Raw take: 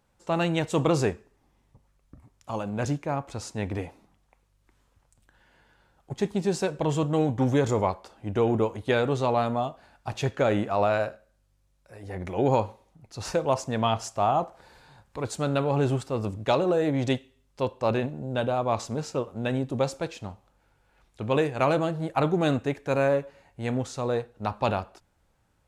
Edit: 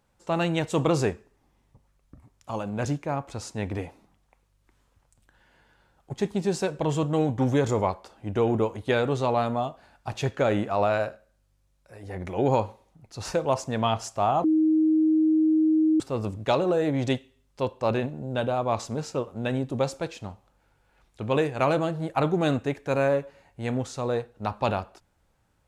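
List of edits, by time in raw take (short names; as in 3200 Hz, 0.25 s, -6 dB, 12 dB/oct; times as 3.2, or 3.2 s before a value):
14.44–16 bleep 314 Hz -17.5 dBFS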